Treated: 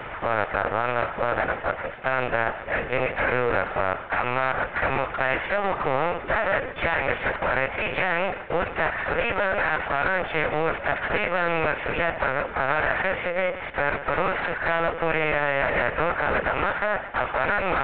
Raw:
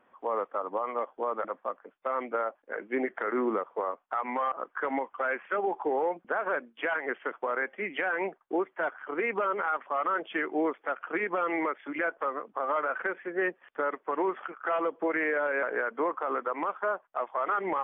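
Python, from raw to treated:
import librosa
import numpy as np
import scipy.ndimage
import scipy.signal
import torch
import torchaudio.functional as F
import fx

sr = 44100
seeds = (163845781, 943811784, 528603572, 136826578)

y = fx.bin_compress(x, sr, power=0.4)
y = fx.echo_feedback(y, sr, ms=135, feedback_pct=38, wet_db=-15.0)
y = 10.0 ** (-10.5 / 20.0) * np.tanh(y / 10.0 ** (-10.5 / 20.0))
y = fx.formant_shift(y, sr, semitones=3)
y = fx.lpc_vocoder(y, sr, seeds[0], excitation='pitch_kept', order=16)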